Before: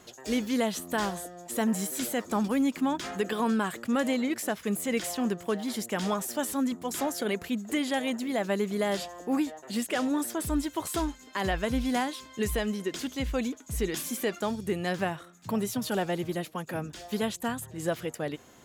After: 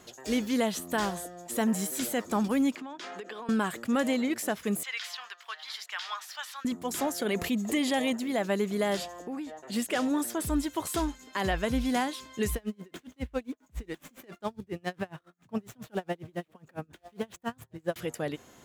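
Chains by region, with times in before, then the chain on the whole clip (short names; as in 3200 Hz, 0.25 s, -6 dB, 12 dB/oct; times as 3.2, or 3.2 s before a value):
2.75–3.49 three-band isolator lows -23 dB, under 270 Hz, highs -17 dB, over 6300 Hz + compressor 16:1, threshold -36 dBFS
4.83–6.65 HPF 1100 Hz 24 dB/oct + resonant high shelf 6200 Hz -12 dB, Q 1.5 + mismatched tape noise reduction decoder only
7.35–8.13 notch 1500 Hz, Q 5.6 + fast leveller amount 50%
9.22–9.72 high shelf 8600 Hz -10.5 dB + compressor 5:1, threshold -34 dBFS
12.55–17.96 median filter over 9 samples + dB-linear tremolo 7.3 Hz, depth 32 dB
whole clip: dry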